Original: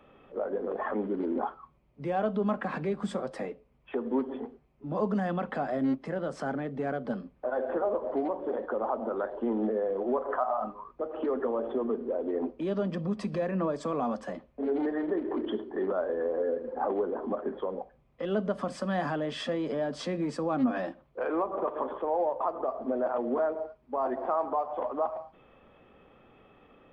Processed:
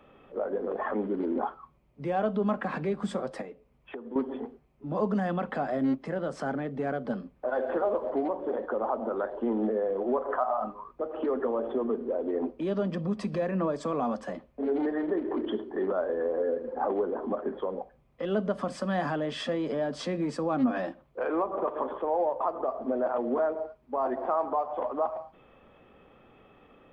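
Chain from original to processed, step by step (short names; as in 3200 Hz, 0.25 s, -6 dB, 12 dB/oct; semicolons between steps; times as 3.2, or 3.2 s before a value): 3.41–4.16 compressor 4:1, threshold -40 dBFS, peak gain reduction 13 dB; 7.48–8.1 high shelf 2700 Hz +9 dB; gain +1 dB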